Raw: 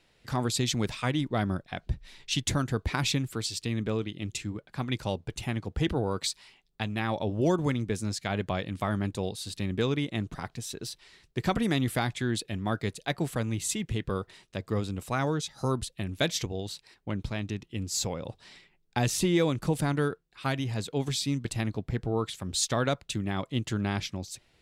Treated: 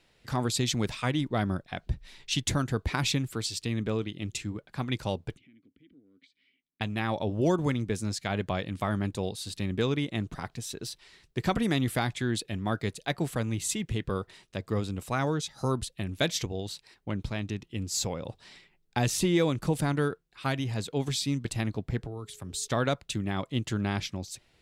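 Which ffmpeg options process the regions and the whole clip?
-filter_complex "[0:a]asettb=1/sr,asplit=3[s0][s1][s2];[s0]atrim=end=5.374[s3];[s1]atrim=start=5.37:end=6.81,asetpts=PTS-STARTPTS,afade=t=in:d=0.004:c=qsin,afade=t=out:st=1.436:d=0.004:c=qsin,highshelf=f=4400:g=-11.5,acompressor=threshold=0.00794:ratio=10:attack=3.2:release=140:knee=1:detection=peak,asplit=3[s4][s5][s6];[s4]bandpass=f=270:t=q:w=8,volume=1[s7];[s5]bandpass=f=2290:t=q:w=8,volume=0.501[s8];[s6]bandpass=f=3010:t=q:w=8,volume=0.355[s9];[s7][s8][s9]amix=inputs=3:normalize=0[s10];[s2]atrim=start=6.806[s11];[s3][s10]acrossfade=d=0.004:c1=hsin:c2=qsin[s12];[s12][s11]acrossfade=d=0.004:c1=qsin:c2=hsin,asettb=1/sr,asplit=3[s13][s14][s15];[s13]atrim=end=22.024[s16];[s14]atrim=start=22.02:end=22.68,asetpts=PTS-STARTPTS,afade=t=in:d=0.004:c=qsin,afade=t=out:st=0.656:d=0.004:c=qsin,bandreject=f=210:w=5.8,acrossover=split=230|6300[s17][s18][s19];[s17]acompressor=threshold=0.0112:ratio=4[s20];[s18]acompressor=threshold=0.00708:ratio=4[s21];[s19]acompressor=threshold=0.02:ratio=4[s22];[s20][s21][s22]amix=inputs=3:normalize=0,aeval=exprs='val(0)+0.00112*sin(2*PI*420*n/s)':c=same[s23];[s15]atrim=start=22.676[s24];[s16][s23]acrossfade=d=0.004:c1=hsin:c2=qsin[s25];[s25][s24]acrossfade=d=0.004:c1=qsin:c2=hsin"

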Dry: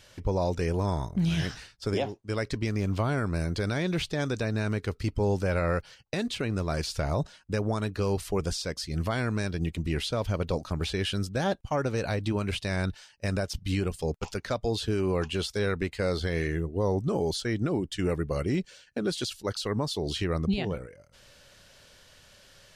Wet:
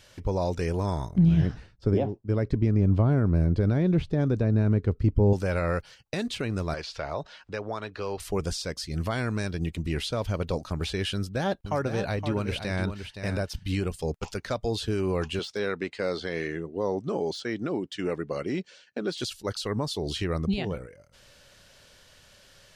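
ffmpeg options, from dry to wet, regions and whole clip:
-filter_complex "[0:a]asettb=1/sr,asplit=3[s0][s1][s2];[s0]atrim=end=1.184[s3];[s1]atrim=start=1.18:end=5.33,asetpts=PTS-STARTPTS,afade=t=in:d=0.004:c=qsin,afade=t=out:st=4.146:d=0.004:c=qsin,lowpass=f=2500:p=1,tiltshelf=f=680:g=8[s4];[s2]atrim=start=5.326[s5];[s3][s4]acrossfade=d=0.004:c1=hsin:c2=qsin[s6];[s6][s5]acrossfade=d=0.004:c1=qsin:c2=hsin,asettb=1/sr,asplit=3[s7][s8][s9];[s7]atrim=end=6.744[s10];[s8]atrim=start=6.74:end=8.2,asetpts=PTS-STARTPTS,afade=t=in:d=0.004:c=qsin,afade=t=out:st=1.456:d=0.004:c=qsin,acrossover=split=410 5200:gain=0.251 1 0.0708[s11][s12][s13];[s11][s12][s13]amix=inputs=3:normalize=0,acompressor=mode=upward:threshold=0.0141:ratio=2.5:attack=3.2:release=140:knee=2.83:detection=peak[s14];[s9]atrim=start=8.196[s15];[s10][s14]acrossfade=d=0.004:c1=hsin:c2=qsin[s16];[s16][s15]acrossfade=d=0.004:c1=qsin:c2=hsin,asettb=1/sr,asplit=3[s17][s18][s19];[s17]atrim=end=11.144[s20];[s18]atrim=start=11.14:end=13.74,asetpts=PTS-STARTPTS,afade=t=in:d=0.004:c=qsin,afade=t=out:st=2.596:d=0.004:c=qsin,equalizer=f=7400:w=1.2:g=-5,aecho=1:1:518:0.376,atrim=end_sample=114660[s21];[s19]atrim=start=13.736[s22];[s20][s21]acrossfade=d=0.004:c1=hsin:c2=qsin[s23];[s23][s22]acrossfade=d=0.004:c1=qsin:c2=hsin,asettb=1/sr,asplit=3[s24][s25][s26];[s24]atrim=end=15.394[s27];[s25]atrim=start=15.39:end=19.2,asetpts=PTS-STARTPTS,afade=t=in:d=0.004:c=qsin,afade=t=out:st=3.806:d=0.004:c=qsin,highpass=210,lowpass=6000,deesser=0.9[s28];[s26]atrim=start=19.196[s29];[s27][s28]acrossfade=d=0.004:c1=hsin:c2=qsin[s30];[s30][s29]acrossfade=d=0.004:c1=qsin:c2=hsin"

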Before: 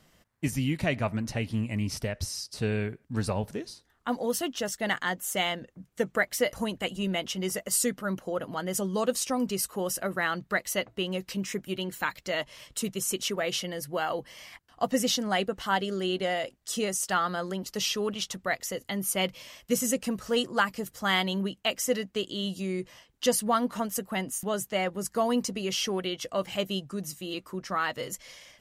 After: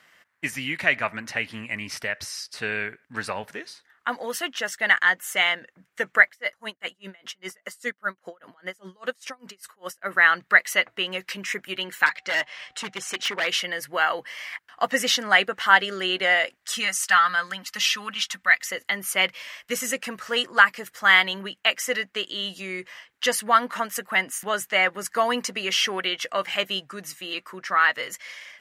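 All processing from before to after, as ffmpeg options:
-filter_complex "[0:a]asettb=1/sr,asplit=3[s0][s1][s2];[s0]atrim=end=6.284[s3];[s1]atrim=start=6.28:end=10.07,asetpts=PTS-STARTPTS,afade=t=in:d=0.004:c=qsin,afade=t=out:st=3.786:d=0.004:c=qsin,equalizer=f=2600:t=o:w=0.32:g=-4,aeval=exprs='val(0)*pow(10,-33*(0.5-0.5*cos(2*PI*5*n/s))/20)':c=same[s4];[s2]atrim=start=10.066[s5];[s3][s4]acrossfade=d=0.004:c1=hsin:c2=qsin[s6];[s6][s5]acrossfade=d=0.004:c1=qsin:c2=hsin,asettb=1/sr,asplit=3[s7][s8][s9];[s7]atrim=end=12.064[s10];[s8]atrim=start=12.06:end=13.47,asetpts=PTS-STARTPTS,afade=t=in:d=0.004:c=qsin,afade=t=out:st=1.406:d=0.004:c=qsin,lowpass=6300,aeval=exprs='0.0501*(abs(mod(val(0)/0.0501+3,4)-2)-1)':c=same,aeval=exprs='val(0)+0.000708*sin(2*PI*760*n/s)':c=same[s11];[s9]atrim=start=13.466[s12];[s10][s11]acrossfade=d=0.004:c1=hsin:c2=qsin[s13];[s13][s12]acrossfade=d=0.004:c1=qsin:c2=hsin,asettb=1/sr,asplit=3[s14][s15][s16];[s14]atrim=end=16.744[s17];[s15]atrim=start=16.74:end=18.72,asetpts=PTS-STARTPTS,afade=t=in:d=0.004:c=qsin,afade=t=out:st=1.976:d=0.004:c=qsin,equalizer=f=440:w=1.1:g=-14,aecho=1:1:3.9:0.44,atrim=end_sample=87318[s18];[s16]atrim=start=18.716[s19];[s17][s18]acrossfade=d=0.004:c1=hsin:c2=qsin[s20];[s20][s19]acrossfade=d=0.004:c1=qsin:c2=hsin,highpass=f=440:p=1,equalizer=f=1800:w=0.86:g=15,dynaudnorm=f=700:g=9:m=3.76,volume=0.891"

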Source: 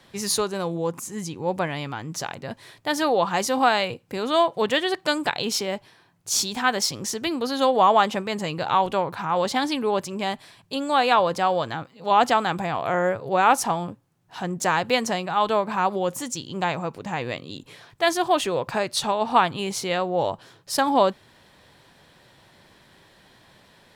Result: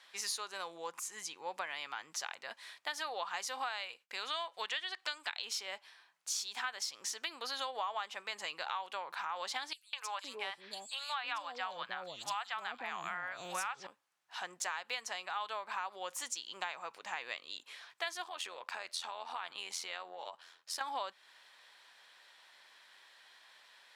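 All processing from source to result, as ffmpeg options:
-filter_complex "[0:a]asettb=1/sr,asplit=3[s0][s1][s2];[s0]atrim=end=3.884[s3];[s1]atrim=start=3.88:end=5.42,asetpts=PTS-STARTPTS,afade=t=in:d=0.004:c=qsin,afade=t=out:st=1.536:d=0.004:c=qsin,acrossover=split=7200[s4][s5];[s5]acompressor=threshold=0.00158:ratio=4:attack=1:release=60[s6];[s4][s6]amix=inputs=2:normalize=0,tiltshelf=f=1300:g=-3.5,agate=range=0.0224:threshold=0.00158:ratio=3:release=100:detection=peak[s7];[s2]atrim=start=5.416[s8];[s3][s7]acrossfade=d=0.004:c1=hsin:c2=qsin[s9];[s9][s8]acrossfade=d=0.004:c1=qsin:c2=hsin,asettb=1/sr,asplit=3[s10][s11][s12];[s10]atrim=end=9.734[s13];[s11]atrim=start=9.73:end=13.87,asetpts=PTS-STARTPTS,afade=t=in:d=0.004:c=qsin,afade=t=out:st=4.136:d=0.004:c=qsin,asubboost=boost=10.5:cutoff=180,acrossover=split=630|4200[s14][s15][s16];[s15]adelay=200[s17];[s14]adelay=510[s18];[s18][s17][s16]amix=inputs=3:normalize=0,atrim=end_sample=182574[s19];[s12]atrim=start=13.866[s20];[s13][s19]acrossfade=d=0.004:c1=hsin:c2=qsin[s21];[s21][s20]acrossfade=d=0.004:c1=qsin:c2=hsin,asettb=1/sr,asplit=3[s22][s23][s24];[s22]atrim=end=18.244[s25];[s23]atrim=start=18.24:end=20.81,asetpts=PTS-STARTPTS,afade=t=in:d=0.004:c=qsin,afade=t=out:st=2.566:d=0.004:c=qsin,acompressor=threshold=0.0501:ratio=4:attack=3.2:release=140:knee=1:detection=peak,tremolo=f=85:d=0.667[s26];[s24]atrim=start=20.806[s27];[s25][s26]acrossfade=d=0.004:c1=hsin:c2=qsin[s28];[s28][s27]acrossfade=d=0.004:c1=qsin:c2=hsin,highpass=1200,highshelf=f=11000:g=-11.5,acompressor=threshold=0.0224:ratio=6,volume=0.75"

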